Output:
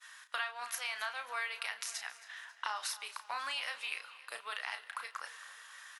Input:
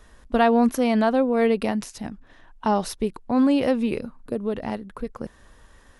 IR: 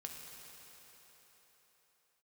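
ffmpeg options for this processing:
-filter_complex "[0:a]highpass=f=1300:w=0.5412,highpass=f=1300:w=1.3066,agate=range=0.0224:threshold=0.00126:ratio=3:detection=peak,acompressor=threshold=0.00631:ratio=6,asplit=2[s0][s1];[s1]adelay=33,volume=0.398[s2];[s0][s2]amix=inputs=2:normalize=0,aecho=1:1:271|542|813|1084:0.126|0.0592|0.0278|0.0131,asplit=2[s3][s4];[1:a]atrim=start_sample=2205,asetrate=57330,aresample=44100,lowpass=6200[s5];[s4][s5]afir=irnorm=-1:irlink=0,volume=0.376[s6];[s3][s6]amix=inputs=2:normalize=0,volume=2.24" -ar 48000 -c:a aac -b:a 96k

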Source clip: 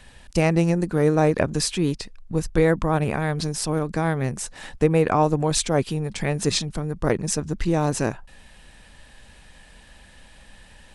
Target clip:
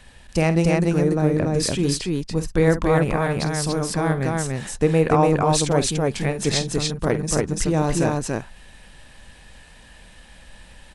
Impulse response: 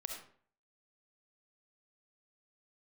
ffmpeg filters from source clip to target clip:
-filter_complex "[0:a]asettb=1/sr,asplit=3[s0][s1][s2];[s0]atrim=end=0.914[s3];[s1]atrim=start=0.91:end=1.63,asetpts=PTS-STARTPTS,afade=t=in:d=0.004:c=qsin,afade=t=out:st=0.716:d=0.004:c=qsin,acrossover=split=420[s4][s5];[s5]acompressor=threshold=0.0282:ratio=2.5[s6];[s4][s6]amix=inputs=2:normalize=0[s7];[s2]atrim=start=1.626[s8];[s3][s7]acrossfade=d=0.004:c1=hsin:c2=qsin[s9];[s9][s8]acrossfade=d=0.004:c1=qsin:c2=hsin,aecho=1:1:49.56|288.6:0.251|0.794"

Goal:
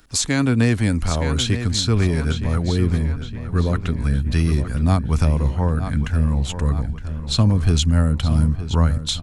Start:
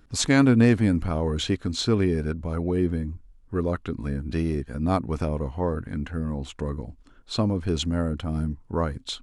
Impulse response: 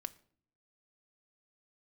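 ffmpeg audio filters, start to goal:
-filter_complex "[0:a]highshelf=f=3500:g=9.5,asplit=2[s0][s1];[s1]adelay=915,lowpass=f=4000:p=1,volume=0.251,asplit=2[s2][s3];[s3]adelay=915,lowpass=f=4000:p=1,volume=0.54,asplit=2[s4][s5];[s5]adelay=915,lowpass=f=4000:p=1,volume=0.54,asplit=2[s6][s7];[s7]adelay=915,lowpass=f=4000:p=1,volume=0.54,asplit=2[s8][s9];[s9]adelay=915,lowpass=f=4000:p=1,volume=0.54,asplit=2[s10][s11];[s11]adelay=915,lowpass=f=4000:p=1,volume=0.54[s12];[s0][s2][s4][s6][s8][s10][s12]amix=inputs=7:normalize=0,acrossover=split=330[s13][s14];[s14]acompressor=threshold=0.0562:ratio=6[s15];[s13][s15]amix=inputs=2:normalize=0,asubboost=boost=5.5:cutoff=160,acrossover=split=500[s16][s17];[s17]acontrast=46[s18];[s16][s18]amix=inputs=2:normalize=0"

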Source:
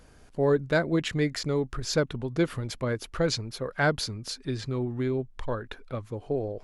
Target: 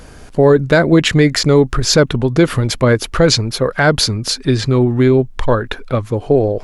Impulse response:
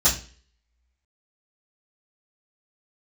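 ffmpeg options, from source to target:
-af "alimiter=level_in=7.94:limit=0.891:release=50:level=0:latency=1,volume=0.891"

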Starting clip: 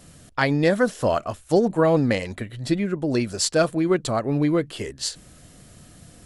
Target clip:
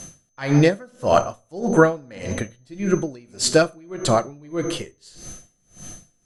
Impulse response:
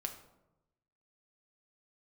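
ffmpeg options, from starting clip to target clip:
-filter_complex "[0:a]asettb=1/sr,asplit=3[s0][s1][s2];[s0]atrim=end=1.694[s3];[s1]atrim=start=1.69:end=2.19,asetpts=PTS-STARTPTS,afade=t=in:d=0.004:c=qsin,afade=t=out:st=0.496:d=0.004:c=qsin,equalizer=f=1400:t=o:w=0.25:g=9.5[s4];[s2]atrim=start=2.186[s5];[s3][s4]acrossfade=d=0.004:c1=hsin:c2=qsin[s6];[s6][s5]acrossfade=d=0.004:c1=qsin:c2=hsin,aeval=exprs='val(0)+0.00562*sin(2*PI*6200*n/s)':c=same,asplit=2[s7][s8];[s8]asubboost=boost=2.5:cutoff=54[s9];[1:a]atrim=start_sample=2205[s10];[s9][s10]afir=irnorm=-1:irlink=0,volume=1.78[s11];[s7][s11]amix=inputs=2:normalize=0,aeval=exprs='val(0)*pow(10,-32*(0.5-0.5*cos(2*PI*1.7*n/s))/20)':c=same"

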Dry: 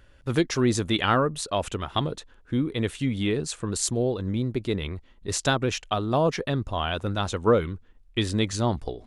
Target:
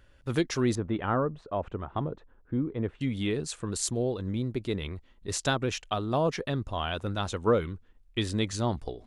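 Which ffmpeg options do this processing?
-filter_complex "[0:a]asettb=1/sr,asplit=3[s0][s1][s2];[s0]atrim=end=0.754[s3];[s1]atrim=start=0.75:end=3.01,asetpts=PTS-STARTPTS,afade=t=in:d=0.004:c=qsin,afade=t=out:st=2.256:d=0.004:c=qsin,lowpass=1200[s4];[s2]atrim=start=3.006[s5];[s3][s4]acrossfade=d=0.004:c1=hsin:c2=qsin[s6];[s6][s5]acrossfade=d=0.004:c1=qsin:c2=hsin,volume=0.631"

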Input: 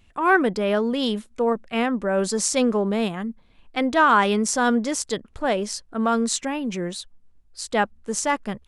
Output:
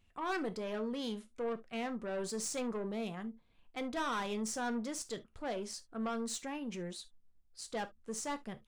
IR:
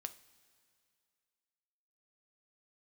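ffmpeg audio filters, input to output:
-filter_complex "[0:a]aeval=exprs='(tanh(10*val(0)+0.2)-tanh(0.2))/10':c=same[s0];[1:a]atrim=start_sample=2205,atrim=end_sample=3528[s1];[s0][s1]afir=irnorm=-1:irlink=0,volume=0.355"

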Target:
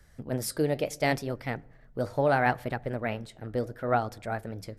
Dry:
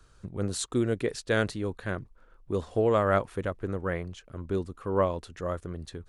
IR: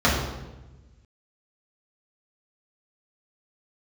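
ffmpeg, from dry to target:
-filter_complex "[0:a]asplit=2[s0][s1];[1:a]atrim=start_sample=2205[s2];[s1][s2]afir=irnorm=-1:irlink=0,volume=0.00794[s3];[s0][s3]amix=inputs=2:normalize=0,asetrate=56007,aresample=44100,flanger=delay=0.7:depth=8.5:regen=-77:speed=0.73:shape=sinusoidal,volume=1.58"

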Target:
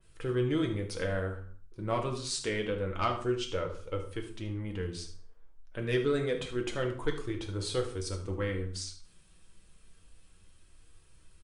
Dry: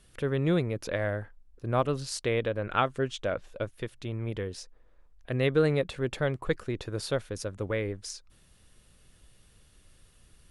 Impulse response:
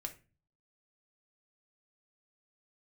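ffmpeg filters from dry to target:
-filter_complex "[0:a]asoftclip=type=tanh:threshold=0.188,flanger=delay=1.8:depth=3.2:regen=-53:speed=0.29:shape=triangular,asetrate=40517,aresample=44100,aecho=1:1:75:0.188[s0];[1:a]atrim=start_sample=2205,afade=t=out:st=0.25:d=0.01,atrim=end_sample=11466,asetrate=25137,aresample=44100[s1];[s0][s1]afir=irnorm=-1:irlink=0,adynamicequalizer=threshold=0.00398:dfrequency=2500:dqfactor=0.7:tfrequency=2500:tqfactor=0.7:attack=5:release=100:ratio=0.375:range=2.5:mode=boostabove:tftype=highshelf"

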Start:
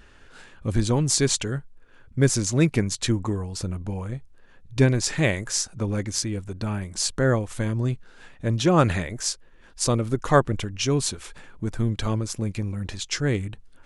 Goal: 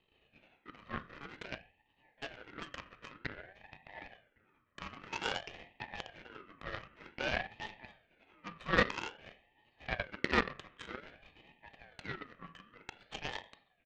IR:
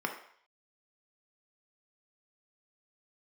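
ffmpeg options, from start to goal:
-filter_complex "[0:a]aeval=exprs='if(lt(val(0),0),0.251*val(0),val(0))':c=same,deesser=0.45,aecho=1:1:1.6:0.61,acrossover=split=2100[s0][s1];[s0]alimiter=limit=0.0708:level=0:latency=1:release=87[s2];[s1]acompressor=threshold=0.00794:ratio=6[s3];[s2][s3]amix=inputs=2:normalize=0,highpass=f=530:t=q:w=0.5412,highpass=f=530:t=q:w=1.307,lowpass=f=3200:t=q:w=0.5176,lowpass=f=3200:t=q:w=0.7071,lowpass=f=3200:t=q:w=1.932,afreqshift=-63,asplit=2[s4][s5];[s5]aeval=exprs='sgn(val(0))*max(abs(val(0))-0.00158,0)':c=same,volume=0.562[s6];[s4][s6]amix=inputs=2:normalize=0,asplit=2[s7][s8];[s8]adelay=1112,lowpass=f=2100:p=1,volume=0.119,asplit=2[s9][s10];[s10]adelay=1112,lowpass=f=2100:p=1,volume=0.33,asplit=2[s11][s12];[s12]adelay=1112,lowpass=f=2100:p=1,volume=0.33[s13];[s7][s9][s11][s13]amix=inputs=4:normalize=0[s14];[1:a]atrim=start_sample=2205[s15];[s14][s15]afir=irnorm=-1:irlink=0,aeval=exprs='0.376*(cos(1*acos(clip(val(0)/0.376,-1,1)))-cos(1*PI/2))+0.00237*(cos(3*acos(clip(val(0)/0.376,-1,1)))-cos(3*PI/2))+0.0473*(cos(7*acos(clip(val(0)/0.376,-1,1)))-cos(7*PI/2))':c=same,aeval=exprs='val(0)*sin(2*PI*1000*n/s+1000*0.35/0.52*sin(2*PI*0.52*n/s))':c=same,volume=1.26"

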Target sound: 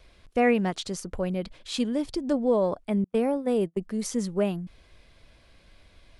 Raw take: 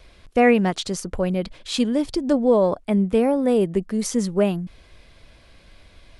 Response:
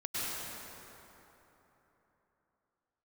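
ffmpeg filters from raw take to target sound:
-filter_complex "[0:a]asettb=1/sr,asplit=3[s0][s1][s2];[s0]atrim=end=3.044[s3];[s1]atrim=start=3.04:end=3.81,asetpts=PTS-STARTPTS,afade=t=in:d=0.004:c=qsin,afade=t=out:st=0.766:d=0.004:c=qsin,agate=range=0.0141:threshold=0.1:ratio=16:detection=peak[s4];[s2]atrim=start=3.806[s5];[s3][s4]acrossfade=d=0.004:c1=hsin:c2=qsin[s6];[s6][s5]acrossfade=d=0.004:c1=qsin:c2=hsin,volume=0.501"

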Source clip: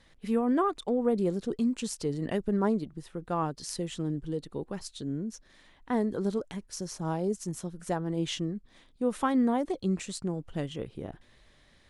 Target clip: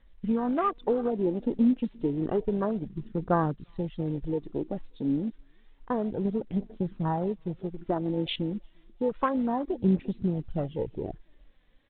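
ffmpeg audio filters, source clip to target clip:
-af "acompressor=threshold=0.0398:ratio=4,tremolo=f=51:d=0.182,aecho=1:1:349|698|1047:0.0708|0.0354|0.0177,aresample=16000,acrusher=bits=4:mode=log:mix=0:aa=0.000001,aresample=44100,aphaser=in_gain=1:out_gain=1:delay=4.1:decay=0.45:speed=0.3:type=triangular,acontrast=36,afwtdn=0.0224" -ar 8000 -c:a pcm_mulaw

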